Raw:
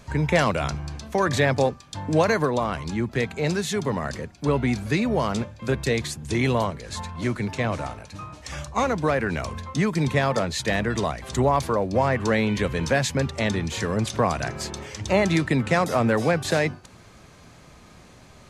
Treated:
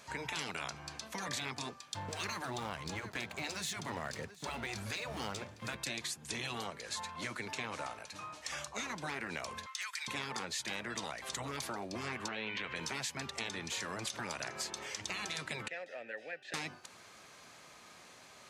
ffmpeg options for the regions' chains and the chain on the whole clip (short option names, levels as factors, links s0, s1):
-filter_complex "[0:a]asettb=1/sr,asplit=3[s0][s1][s2];[s0]atrim=end=1.944[s3];[s1]atrim=start=1.94:end=5.77,asetpts=PTS-STARTPTS,afade=t=in:d=0.004:c=qsin,afade=t=out:st=3.826:d=0.004:c=qsin,equalizer=f=97:t=o:w=1.6:g=12.5,aeval=exprs='sgn(val(0))*max(abs(val(0))-0.00841,0)':c=same,aecho=1:1:731:0.0708,atrim=end_sample=168903[s4];[s2]atrim=start=5.766[s5];[s3][s4]acrossfade=d=0.004:c1=hsin:c2=qsin[s6];[s6][s5]acrossfade=d=0.004:c1=qsin:c2=hsin,asettb=1/sr,asplit=3[s7][s8][s9];[s7]atrim=end=9.664[s10];[s8]atrim=start=9.66:end=10.08,asetpts=PTS-STARTPTS,afade=t=in:d=0.004:c=qsin,afade=t=out:st=0.416:d=0.004:c=qsin,highpass=f=1300:w=0.5412,highpass=f=1300:w=1.3066,aeval=exprs='0.0794*(abs(mod(val(0)/0.0794+3,4)-2)-1)':c=same[s11];[s9]atrim=start=10.076[s12];[s10][s11]acrossfade=d=0.004:c1=hsin:c2=qsin[s13];[s13][s12]acrossfade=d=0.004:c1=qsin:c2=hsin,asettb=1/sr,asplit=3[s14][s15][s16];[s14]atrim=end=12.284[s17];[s15]atrim=start=12.28:end=12.76,asetpts=PTS-STARTPTS,afade=t=in:d=0.004:c=qsin,afade=t=out:st=0.476:d=0.004:c=qsin,lowpass=3500,equalizer=f=2200:w=0.79:g=8,acompressor=threshold=0.0631:ratio=2:attack=3.2:release=140:knee=1:detection=peak[s18];[s16]atrim=start=12.756[s19];[s17][s18]acrossfade=d=0.004:c1=hsin:c2=qsin[s20];[s20][s19]acrossfade=d=0.004:c1=qsin:c2=hsin,asettb=1/sr,asplit=3[s21][s22][s23];[s21]atrim=end=15.684[s24];[s22]atrim=start=15.68:end=16.54,asetpts=PTS-STARTPTS,afade=t=in:d=0.004:c=qsin,afade=t=out:st=0.856:d=0.004:c=qsin,acrossover=split=7300[s25][s26];[s26]acompressor=threshold=0.00355:ratio=4:attack=1:release=60[s27];[s25][s27]amix=inputs=2:normalize=0,asplit=3[s28][s29][s30];[s28]bandpass=f=530:t=q:w=8,volume=1[s31];[s29]bandpass=f=1840:t=q:w=8,volume=0.501[s32];[s30]bandpass=f=2480:t=q:w=8,volume=0.355[s33];[s31][s32][s33]amix=inputs=3:normalize=0,equalizer=f=500:w=2.5:g=-12[s34];[s23]atrim=start=16.536[s35];[s24][s34]acrossfade=d=0.004:c1=hsin:c2=qsin[s36];[s36][s35]acrossfade=d=0.004:c1=qsin:c2=hsin,highpass=f=950:p=1,afftfilt=real='re*lt(hypot(re,im),0.126)':imag='im*lt(hypot(re,im),0.126)':win_size=1024:overlap=0.75,acompressor=threshold=0.0178:ratio=4,volume=0.841"